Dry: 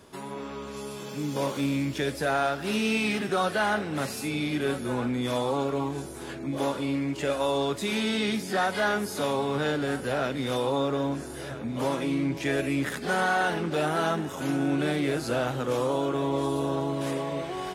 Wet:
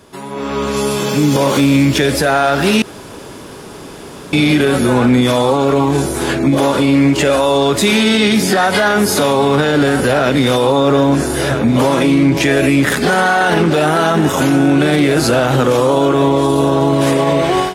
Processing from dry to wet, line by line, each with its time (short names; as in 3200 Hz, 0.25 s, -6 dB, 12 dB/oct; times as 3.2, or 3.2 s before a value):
2.82–4.33 room tone
whole clip: limiter -25.5 dBFS; AGC gain up to 13 dB; gain +8 dB